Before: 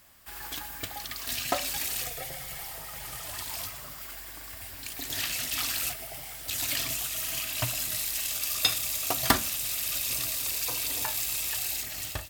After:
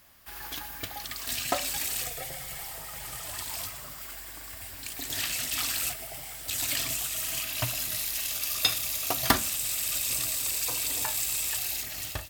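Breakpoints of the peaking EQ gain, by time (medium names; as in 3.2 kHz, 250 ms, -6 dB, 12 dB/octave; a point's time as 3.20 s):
peaking EQ 8 kHz 0.21 oct
-6.5 dB
from 1.04 s +4 dB
from 7.43 s -3 dB
from 9.37 s +6.5 dB
from 11.57 s -1.5 dB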